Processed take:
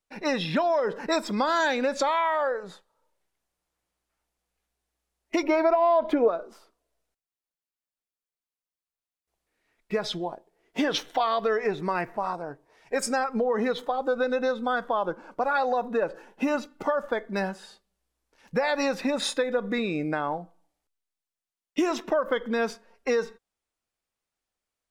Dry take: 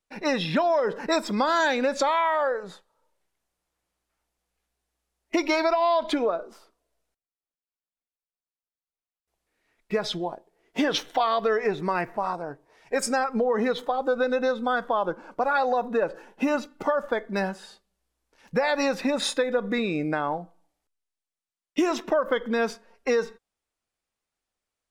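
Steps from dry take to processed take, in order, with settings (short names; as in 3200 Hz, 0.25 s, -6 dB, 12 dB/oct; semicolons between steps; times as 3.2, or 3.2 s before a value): 5.43–6.28 graphic EQ 125/500/4000/8000 Hz +9/+6/-11/-12 dB; gain -1.5 dB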